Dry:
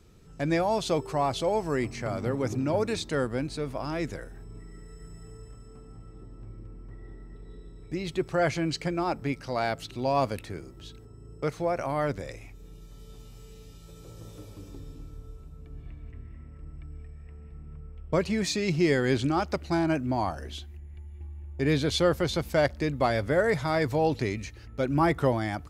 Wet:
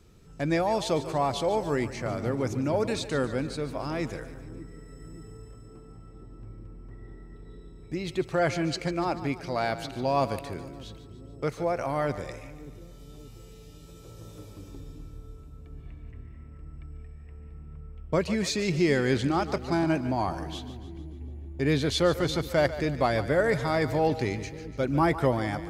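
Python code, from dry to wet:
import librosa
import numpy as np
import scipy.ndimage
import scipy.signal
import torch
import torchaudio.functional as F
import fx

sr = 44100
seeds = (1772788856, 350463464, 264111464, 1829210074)

y = x + fx.echo_split(x, sr, split_hz=390.0, low_ms=580, high_ms=146, feedback_pct=52, wet_db=-13.0, dry=0)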